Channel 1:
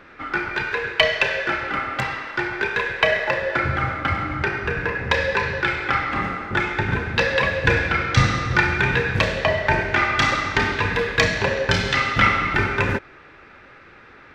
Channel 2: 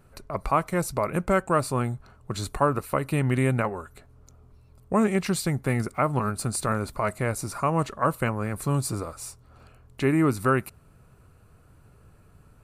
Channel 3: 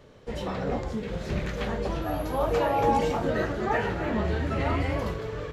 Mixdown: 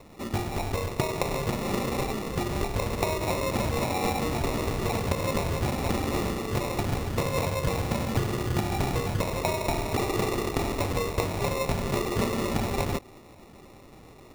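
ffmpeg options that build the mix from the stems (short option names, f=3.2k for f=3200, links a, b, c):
-filter_complex "[0:a]volume=-3dB[a];[1:a]volume=-19.5dB[b];[2:a]adelay=1200,volume=-3dB[c];[a][b][c]amix=inputs=3:normalize=0,acrusher=samples=28:mix=1:aa=0.000001,acompressor=threshold=-23dB:ratio=6"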